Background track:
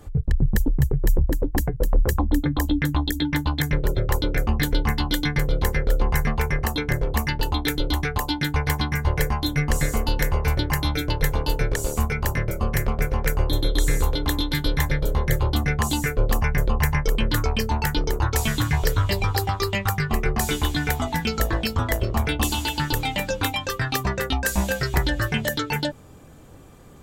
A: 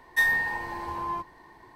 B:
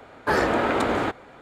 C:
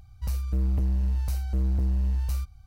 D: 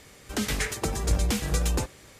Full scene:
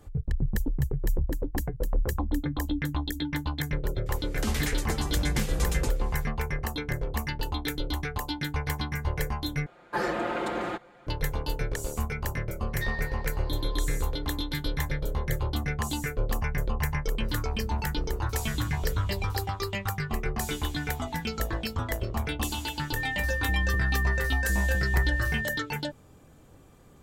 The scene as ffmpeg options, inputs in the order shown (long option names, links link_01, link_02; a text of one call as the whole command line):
ffmpeg -i bed.wav -i cue0.wav -i cue1.wav -i cue2.wav -i cue3.wav -filter_complex "[3:a]asplit=2[link_01][link_02];[0:a]volume=-7.5dB[link_03];[2:a]aecho=1:1:5.7:0.78[link_04];[1:a]lowpass=frequency=4500:width_type=q:width=4.8[link_05];[link_02]aeval=exprs='val(0)+0.0447*sin(2*PI*1800*n/s)':channel_layout=same[link_06];[link_03]asplit=2[link_07][link_08];[link_07]atrim=end=9.664[link_09];[link_04]atrim=end=1.41,asetpts=PTS-STARTPTS,volume=-9.5dB[link_10];[link_08]atrim=start=11.066[link_11];[4:a]atrim=end=2.19,asetpts=PTS-STARTPTS,volume=-4dB,afade=type=in:duration=0.004:curve=hsin,afade=type=out:start_time=2.186:duration=0.004:curve=hsin,adelay=4060[link_12];[link_05]atrim=end=1.75,asetpts=PTS-STARTPTS,volume=-14dB,afade=type=in:duration=0.004:curve=hsin,afade=type=out:start_time=1.746:duration=0.004:curve=hsin,adelay=12640[link_13];[link_01]atrim=end=2.66,asetpts=PTS-STARTPTS,volume=-11.5dB,afade=type=in:duration=0.004:curve=hsin,afade=type=out:start_time=2.656:duration=0.004:curve=hsin,adelay=17010[link_14];[link_06]atrim=end=2.66,asetpts=PTS-STARTPTS,volume=-3dB,afade=type=in:duration=0.004:curve=hsin,afade=type=out:start_time=2.656:duration=0.004:curve=hsin,adelay=22960[link_15];[link_09][link_10]acrossfade=duration=0.004:curve1=hsin:curve2=hsin[link_16];[link_16][link_11]acrossfade=duration=0.004:curve1=hsin:curve2=hsin[link_17];[link_17][link_12][link_13][link_14][link_15]amix=inputs=5:normalize=0" out.wav